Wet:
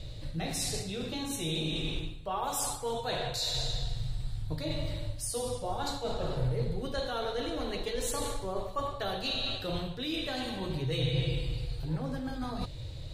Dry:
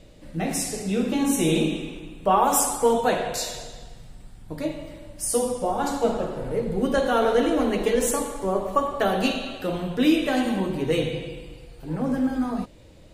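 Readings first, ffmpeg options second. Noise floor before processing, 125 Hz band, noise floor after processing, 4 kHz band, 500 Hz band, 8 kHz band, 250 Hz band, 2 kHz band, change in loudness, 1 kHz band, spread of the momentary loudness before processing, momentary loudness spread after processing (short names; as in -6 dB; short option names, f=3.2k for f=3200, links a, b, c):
-48 dBFS, -0.5 dB, -41 dBFS, -0.5 dB, -12.0 dB, -9.0 dB, -13.5 dB, -9.0 dB, -10.0 dB, -12.0 dB, 13 LU, 6 LU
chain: -af "equalizer=f=4k:t=o:w=0.52:g=14.5,areverse,acompressor=threshold=-31dB:ratio=6,areverse,lowshelf=f=160:t=q:w=3:g=8.5"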